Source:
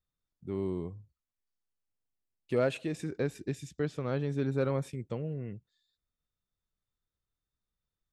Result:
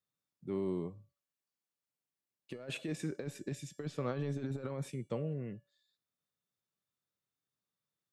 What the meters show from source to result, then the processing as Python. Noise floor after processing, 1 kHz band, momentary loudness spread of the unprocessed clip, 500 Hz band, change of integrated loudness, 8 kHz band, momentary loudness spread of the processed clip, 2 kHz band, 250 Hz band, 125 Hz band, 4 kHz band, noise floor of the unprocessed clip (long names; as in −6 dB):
below −85 dBFS, −6.0 dB, 13 LU, −7.5 dB, −5.5 dB, 0.0 dB, 11 LU, −6.5 dB, −4.5 dB, −5.0 dB, −1.5 dB, below −85 dBFS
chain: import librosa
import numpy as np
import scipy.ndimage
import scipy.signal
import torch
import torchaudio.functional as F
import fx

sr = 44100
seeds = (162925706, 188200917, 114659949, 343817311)

y = scipy.signal.sosfilt(scipy.signal.butter(4, 120.0, 'highpass', fs=sr, output='sos'), x)
y = fx.over_compress(y, sr, threshold_db=-33.0, ratio=-0.5)
y = fx.comb_fb(y, sr, f0_hz=570.0, decay_s=0.47, harmonics='all', damping=0.0, mix_pct=70)
y = y * 10.0 ** (7.0 / 20.0)